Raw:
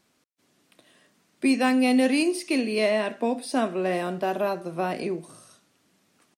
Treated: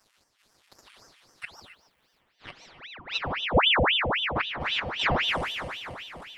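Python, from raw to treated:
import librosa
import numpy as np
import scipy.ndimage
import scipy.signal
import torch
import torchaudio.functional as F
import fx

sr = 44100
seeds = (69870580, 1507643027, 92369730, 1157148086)

y = fx.reverse_delay_fb(x, sr, ms=145, feedback_pct=78, wet_db=-12.0)
y = fx.env_lowpass_down(y, sr, base_hz=820.0, full_db=-20.0)
y = fx.dmg_noise_colour(y, sr, seeds[0], colour='white', level_db=-51.0, at=(1.52, 2.19), fade=0.02)
y = fx.formant_cascade(y, sr, vowel='i', at=(3.17, 4.35), fade=0.02)
y = fx.gate_flip(y, sr, shuts_db=-18.0, range_db=-29)
y = fx.filter_sweep_highpass(y, sr, from_hz=1900.0, to_hz=140.0, start_s=1.95, end_s=4.21, q=2.8)
y = fx.robotise(y, sr, hz=216.0)
y = y + 10.0 ** (-13.5 / 20.0) * np.pad(y, (int(148 * sr / 1000.0), 0))[:len(y)]
y = fx.rev_gated(y, sr, seeds[1], gate_ms=310, shape='flat', drr_db=5.5)
y = fx.ring_lfo(y, sr, carrier_hz=1800.0, swing_pct=85, hz=3.8)
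y = F.gain(torch.from_numpy(y), 5.0).numpy()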